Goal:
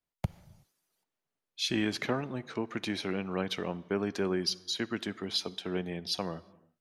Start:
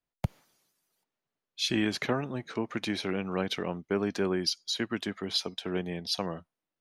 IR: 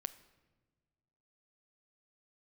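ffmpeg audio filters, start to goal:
-filter_complex "[0:a]asplit=2[s0][s1];[1:a]atrim=start_sample=2205,afade=t=out:st=0.28:d=0.01,atrim=end_sample=12789,asetrate=26901,aresample=44100[s2];[s1][s2]afir=irnorm=-1:irlink=0,volume=0.794[s3];[s0][s3]amix=inputs=2:normalize=0,volume=0.447"

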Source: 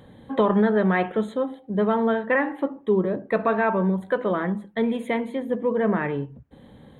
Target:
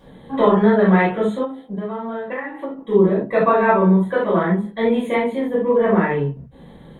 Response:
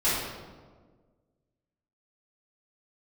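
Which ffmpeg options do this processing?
-filter_complex "[1:a]atrim=start_sample=2205,atrim=end_sample=3969[s0];[0:a][s0]afir=irnorm=-1:irlink=0,asettb=1/sr,asplit=3[s1][s2][s3];[s1]atrim=end=1.444[s4];[s2]atrim=start=1.44:end=2.79,asetpts=PTS-STARTPTS,afade=t=in:d=0.004:c=qsin,afade=t=out:st=1.346:d=0.004:c=qsin,acompressor=threshold=0.112:ratio=10[s5];[s3]atrim=start=2.786[s6];[s4][s5]acrossfade=d=0.004:c1=hsin:c2=qsin[s7];[s7][s6]acrossfade=d=0.004:c1=qsin:c2=hsin,volume=0.562"

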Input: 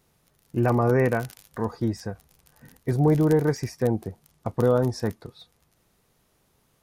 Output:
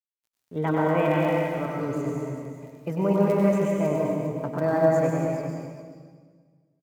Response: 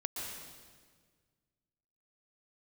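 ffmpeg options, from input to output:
-filter_complex "[0:a]highpass=81,highshelf=f=6200:g=-7,aeval=exprs='sgn(val(0))*max(abs(val(0))-0.002,0)':c=same,asetrate=57191,aresample=44100,atempo=0.771105,aecho=1:1:97|401:0.531|0.335[s0];[1:a]atrim=start_sample=2205[s1];[s0][s1]afir=irnorm=-1:irlink=0,volume=0.708"

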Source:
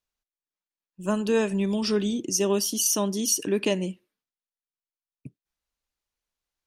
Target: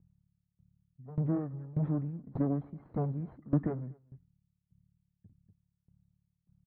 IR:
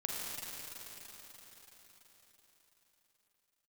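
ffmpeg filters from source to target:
-filter_complex "[0:a]aeval=exprs='clip(val(0),-1,0.0211)':c=same,lowpass=f=1900:w=0.5412,lowpass=f=1900:w=1.3066,aemphasis=mode=reproduction:type=riaa,aeval=exprs='val(0)+0.00316*(sin(2*PI*50*n/s)+sin(2*PI*2*50*n/s)/2+sin(2*PI*3*50*n/s)/3+sin(2*PI*4*50*n/s)/4+sin(2*PI*5*50*n/s)/5)':c=same,asetrate=31183,aresample=44100,atempo=1.41421,highpass=130,asplit=2[s0][s1];[s1]aecho=0:1:241:0.126[s2];[s0][s2]amix=inputs=2:normalize=0,aeval=exprs='val(0)*pow(10,-21*if(lt(mod(1.7*n/s,1),2*abs(1.7)/1000),1-mod(1.7*n/s,1)/(2*abs(1.7)/1000),(mod(1.7*n/s,1)-2*abs(1.7)/1000)/(1-2*abs(1.7)/1000))/20)':c=same,volume=0.794"

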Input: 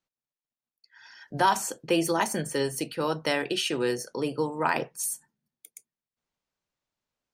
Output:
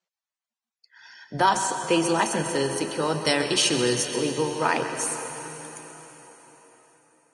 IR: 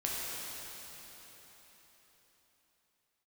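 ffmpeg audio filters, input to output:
-filter_complex "[0:a]asettb=1/sr,asplit=3[s0][s1][s2];[s0]atrim=end=3.144[s3];[s1]atrim=start=3.14:end=4.05,asetpts=PTS-STARTPTS,afade=t=in:d=0.004:c=qsin,afade=t=out:st=0.906:d=0.004:c=qsin,bass=f=250:g=6,treble=f=4000:g=10[s4];[s2]atrim=start=4.046[s5];[s3][s4]acrossfade=d=0.004:c1=hsin:c2=qsin[s6];[s6][s5]acrossfade=d=0.004:c1=qsin:c2=hsin,asplit=2[s7][s8];[1:a]atrim=start_sample=2205,adelay=132[s9];[s8][s9]afir=irnorm=-1:irlink=0,volume=0.266[s10];[s7][s10]amix=inputs=2:normalize=0,volume=1.26" -ar 22050 -c:a libvorbis -b:a 32k

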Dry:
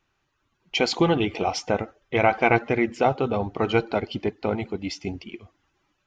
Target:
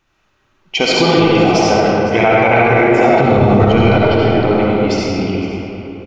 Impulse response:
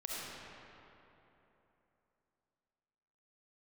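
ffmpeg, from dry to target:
-filter_complex "[0:a]asettb=1/sr,asplit=3[s0][s1][s2];[s0]atrim=end=3.174[s3];[s1]atrim=start=3.17:end=3.63,asetpts=PTS-STARTPTS,afade=t=in:d=0.004:c=qsin,afade=t=out:st=0.456:d=0.004:c=qsin,bass=f=250:g=13,treble=f=4000:g=10[s4];[s2]atrim=start=3.626[s5];[s3][s4]acrossfade=d=0.004:c1=hsin:c2=qsin[s6];[s6][s5]acrossfade=d=0.004:c1=qsin:c2=hsin,aecho=1:1:509:0.126[s7];[1:a]atrim=start_sample=2205[s8];[s7][s8]afir=irnorm=-1:irlink=0,alimiter=level_in=4.22:limit=0.891:release=50:level=0:latency=1,volume=0.891"

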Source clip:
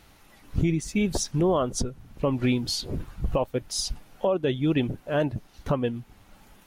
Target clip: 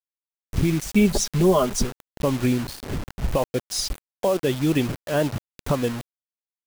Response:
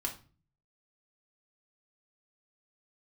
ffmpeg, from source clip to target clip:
-filter_complex "[0:a]asettb=1/sr,asplit=3[s0][s1][s2];[s0]atrim=end=0.944[s3];[s1]atrim=start=0.94:end=1.84,asetpts=PTS-STARTPTS,afade=t=in:d=0.004:c=qsin,afade=t=out:st=0.896:d=0.004:c=qsin,aecho=1:1:4.9:0.75,atrim=end_sample=39690[s4];[s2]atrim=start=1.836[s5];[s3][s4]acrossfade=d=0.004:c1=hsin:c2=qsin[s6];[s6][s5]acrossfade=d=0.004:c1=qsin:c2=hsin,asettb=1/sr,asplit=3[s7][s8][s9];[s7]atrim=end=2.474[s10];[s8]atrim=start=2.47:end=3.29,asetpts=PTS-STARTPTS,afade=t=in:d=0.004:c=qsin,afade=t=out:st=0.816:d=0.004:c=qsin,lowpass=f=1100:p=1[s11];[s9]atrim=start=3.286[s12];[s10][s11]acrossfade=d=0.004:c1=hsin:c2=qsin[s13];[s13][s12]acrossfade=d=0.004:c1=qsin:c2=hsin,acrusher=bits=5:mix=0:aa=0.000001,volume=1.33"

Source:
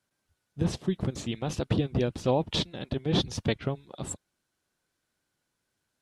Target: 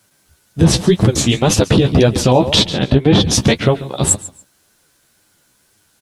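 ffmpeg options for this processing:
-filter_complex "[0:a]asettb=1/sr,asplit=3[s0][s1][s2];[s0]atrim=end=2.644[s3];[s1]atrim=start=2.64:end=3.29,asetpts=PTS-STARTPTS,afade=t=in:d=0.004:c=qsin,afade=t=out:st=0.646:d=0.004:c=qsin,bass=f=250:g=2,treble=f=4000:g=-8[s4];[s2]atrim=start=3.286[s5];[s3][s4]acrossfade=d=0.004:c1=hsin:c2=qsin[s6];[s6][s5]acrossfade=d=0.004:c1=qsin:c2=hsin,aecho=1:1:140|280:0.126|0.029,flanger=delay=9.2:depth=6.7:regen=18:speed=1.9:shape=sinusoidal,highshelf=f=5800:g=9.5,alimiter=level_in=15:limit=0.891:release=50:level=0:latency=1,volume=0.891"

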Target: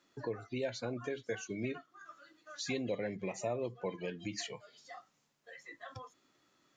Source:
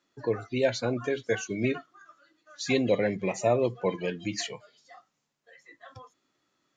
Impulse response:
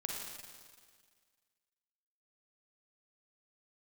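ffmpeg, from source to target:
-af "acompressor=threshold=0.00355:ratio=2,volume=1.41"

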